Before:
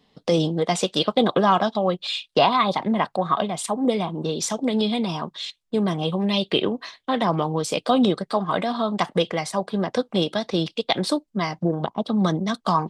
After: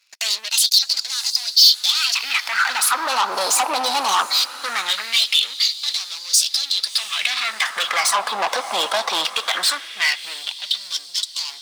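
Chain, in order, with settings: speed glide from 132% -> 90%; HPF 150 Hz 24 dB/oct; high shelf 3300 Hz +6 dB; limiter -15 dBFS, peak gain reduction 11.5 dB; sample leveller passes 3; diffused feedback echo 0.677 s, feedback 55%, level -15 dB; LFO high-pass sine 0.2 Hz 870–4700 Hz; core saturation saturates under 3300 Hz; gain +3 dB

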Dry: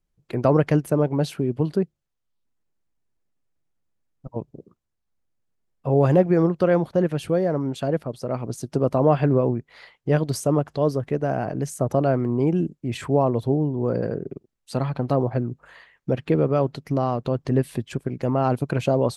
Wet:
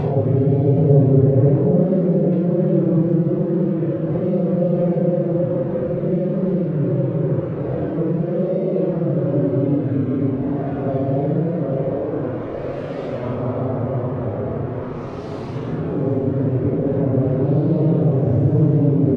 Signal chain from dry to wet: time blur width 0.152 s; treble ducked by the level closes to 360 Hz, closed at -22 dBFS; comb 7.3 ms, depth 37%; in parallel at -1 dB: limiter -22.5 dBFS, peak gain reduction 13 dB; on the sum: sample gate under -31 dBFS; treble ducked by the level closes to 1400 Hz, closed at -22 dBFS; Paulstretch 5.5×, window 0.05 s, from 5.85; delay with a stepping band-pass 0.775 s, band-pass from 440 Hz, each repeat 1.4 oct, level -0.5 dB; gain +1.5 dB

